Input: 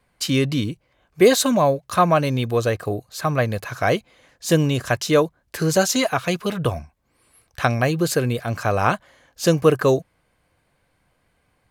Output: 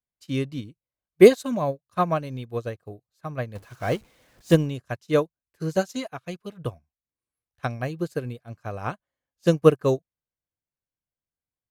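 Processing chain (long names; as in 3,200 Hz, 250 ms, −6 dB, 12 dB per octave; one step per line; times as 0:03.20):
0:03.55–0:04.56: converter with a step at zero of −23.5 dBFS
low-shelf EQ 480 Hz +5.5 dB
expander for the loud parts 2.5 to 1, over −30 dBFS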